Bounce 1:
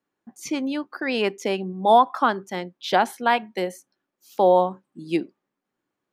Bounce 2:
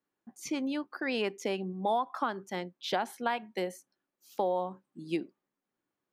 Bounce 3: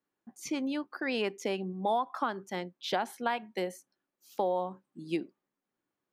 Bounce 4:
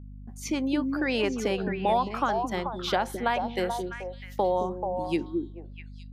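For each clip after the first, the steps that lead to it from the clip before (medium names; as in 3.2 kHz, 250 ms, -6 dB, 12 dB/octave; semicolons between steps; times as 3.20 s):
compression 4:1, threshold -21 dBFS, peak gain reduction 9.5 dB; trim -6 dB
no audible change
gate -56 dBFS, range -18 dB; repeats whose band climbs or falls 217 ms, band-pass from 270 Hz, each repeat 1.4 oct, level -1 dB; hum 50 Hz, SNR 14 dB; trim +4.5 dB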